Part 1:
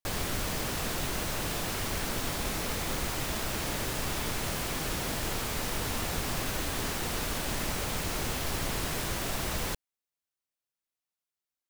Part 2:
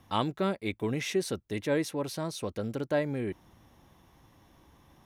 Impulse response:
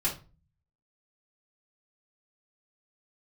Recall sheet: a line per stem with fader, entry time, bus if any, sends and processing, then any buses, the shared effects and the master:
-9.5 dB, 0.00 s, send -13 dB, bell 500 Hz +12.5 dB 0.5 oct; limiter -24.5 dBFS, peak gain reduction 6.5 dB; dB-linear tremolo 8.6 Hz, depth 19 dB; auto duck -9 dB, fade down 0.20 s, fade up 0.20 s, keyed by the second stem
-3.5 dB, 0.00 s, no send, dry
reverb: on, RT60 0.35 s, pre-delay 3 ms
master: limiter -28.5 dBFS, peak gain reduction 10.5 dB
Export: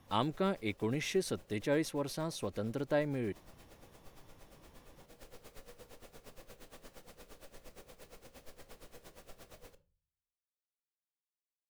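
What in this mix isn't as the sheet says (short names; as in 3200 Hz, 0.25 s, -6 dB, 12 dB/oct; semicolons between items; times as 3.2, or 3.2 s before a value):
stem 1 -9.5 dB -> -19.0 dB; master: missing limiter -28.5 dBFS, peak gain reduction 10.5 dB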